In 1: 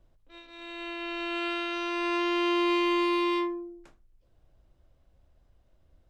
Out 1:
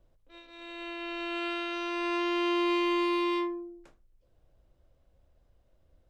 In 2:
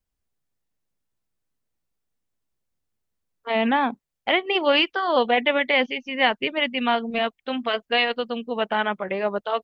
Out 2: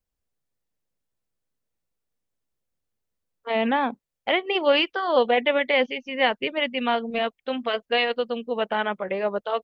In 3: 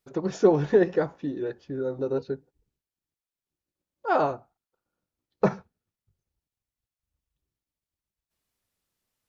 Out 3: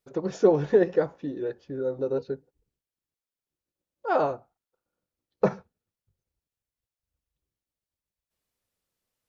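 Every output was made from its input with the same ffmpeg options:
-af "equalizer=frequency=510:width=2.9:gain=5,volume=-2.5dB"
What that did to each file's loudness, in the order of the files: −2.0, −1.5, −0.5 LU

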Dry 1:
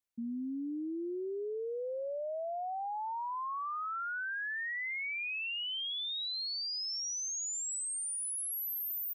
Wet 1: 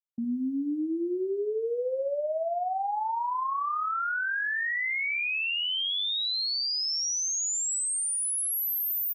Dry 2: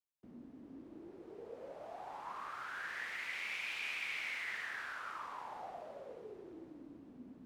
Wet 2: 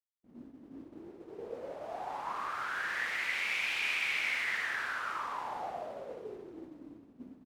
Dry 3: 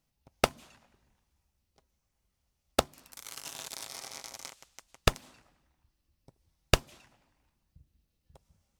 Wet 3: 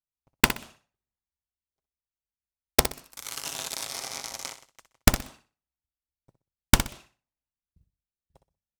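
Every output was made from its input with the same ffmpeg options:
-af "agate=range=-33dB:threshold=-47dB:ratio=3:detection=peak,aeval=exprs='(mod(3.16*val(0)+1,2)-1)/3.16':channel_layout=same,aecho=1:1:62|124|186:0.299|0.0746|0.0187,volume=7.5dB"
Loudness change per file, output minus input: +8.0, +8.5, +6.5 LU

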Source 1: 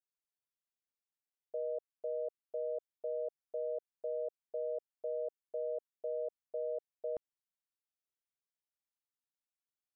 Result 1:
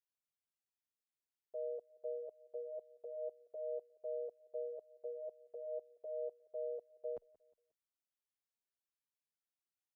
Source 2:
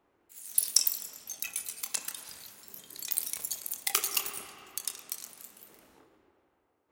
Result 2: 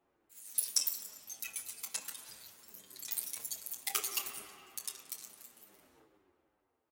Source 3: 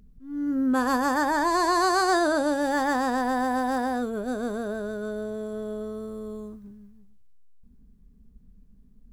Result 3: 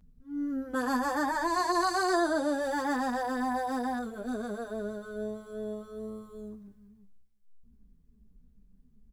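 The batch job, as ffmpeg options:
-filter_complex "[0:a]asplit=2[link_01][link_02];[link_02]asoftclip=type=tanh:threshold=-12.5dB,volume=-6dB[link_03];[link_01][link_03]amix=inputs=2:normalize=0,aecho=1:1:179|358|537:0.0708|0.029|0.0119,asplit=2[link_04][link_05];[link_05]adelay=8,afreqshift=-2.4[link_06];[link_04][link_06]amix=inputs=2:normalize=1,volume=-6dB"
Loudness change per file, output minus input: −5.0, −6.0, −5.5 LU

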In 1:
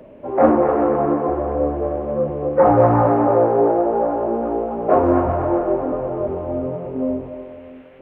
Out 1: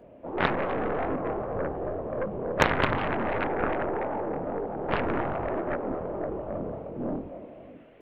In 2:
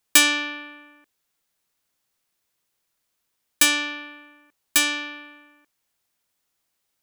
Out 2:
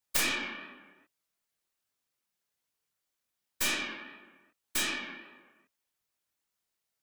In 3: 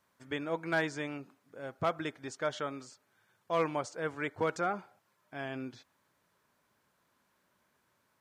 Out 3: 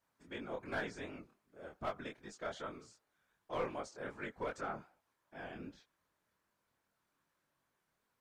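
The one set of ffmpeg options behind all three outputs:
-af "afftfilt=real='hypot(re,im)*cos(2*PI*random(0))':imag='hypot(re,im)*sin(2*PI*random(1))':win_size=512:overlap=0.75,flanger=delay=19.5:depth=7.7:speed=2.6,aeval=exprs='0.355*(cos(1*acos(clip(val(0)/0.355,-1,1)))-cos(1*PI/2))+0.141*(cos(3*acos(clip(val(0)/0.355,-1,1)))-cos(3*PI/2))+0.158*(cos(4*acos(clip(val(0)/0.355,-1,1)))-cos(4*PI/2))+0.112*(cos(6*acos(clip(val(0)/0.355,-1,1)))-cos(6*PI/2))+0.0447*(cos(7*acos(clip(val(0)/0.355,-1,1)))-cos(7*PI/2))':channel_layout=same"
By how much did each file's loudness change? −11.0, −11.5, −8.5 LU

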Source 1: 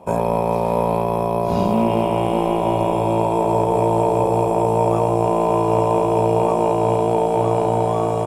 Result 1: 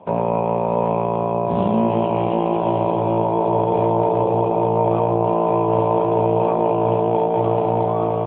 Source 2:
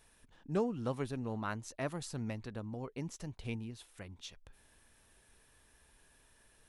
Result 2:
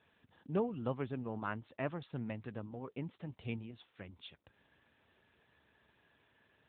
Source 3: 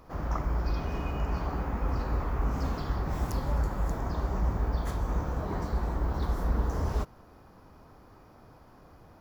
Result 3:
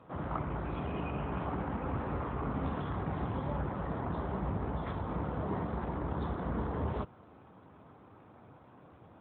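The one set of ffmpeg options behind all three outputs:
-ar 8000 -c:a libopencore_amrnb -b:a 12200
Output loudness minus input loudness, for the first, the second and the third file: −0.5, −1.0, −4.5 LU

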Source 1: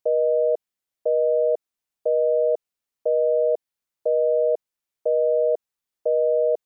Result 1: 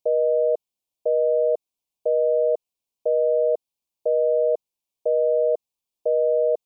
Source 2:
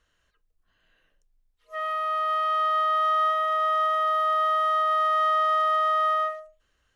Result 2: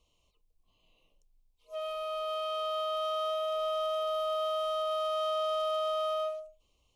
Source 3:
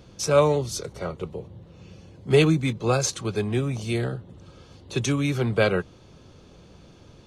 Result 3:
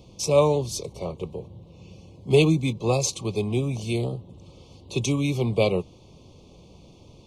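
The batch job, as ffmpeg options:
-af "asuperstop=centerf=1600:order=8:qfactor=1.4"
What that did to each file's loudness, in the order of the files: 0.0, −9.0, 0.0 LU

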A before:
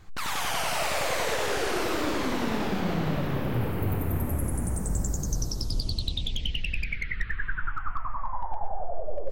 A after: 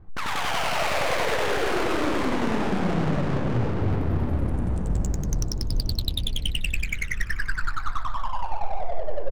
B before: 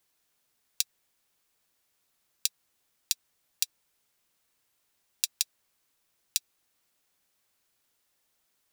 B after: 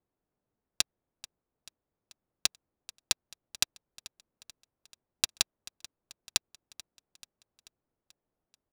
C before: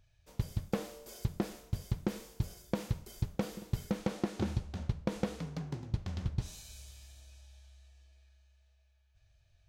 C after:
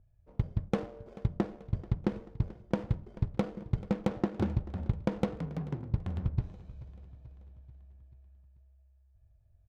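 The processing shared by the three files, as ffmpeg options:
-filter_complex "[0:a]adynamicsmooth=sensitivity=8:basefreq=640,asplit=2[link_01][link_02];[link_02]aecho=0:1:436|872|1308|1744|2180:0.112|0.0628|0.0352|0.0197|0.011[link_03];[link_01][link_03]amix=inputs=2:normalize=0,volume=3.5dB"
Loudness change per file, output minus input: +3.0, +0.5, +3.5 LU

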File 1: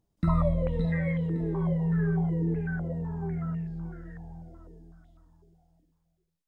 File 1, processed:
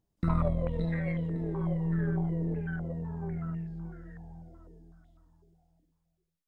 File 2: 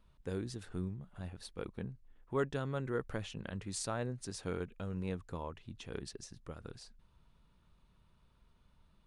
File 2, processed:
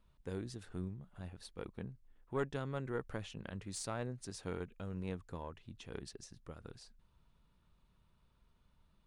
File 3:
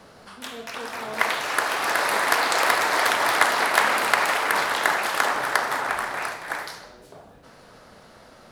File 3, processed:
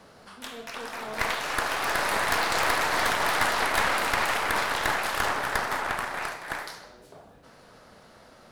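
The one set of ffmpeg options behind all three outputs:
-af "aeval=exprs='(tanh(7.08*val(0)+0.65)-tanh(0.65))/7.08':channel_layout=same"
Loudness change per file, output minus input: −3.5, −3.0, −4.0 LU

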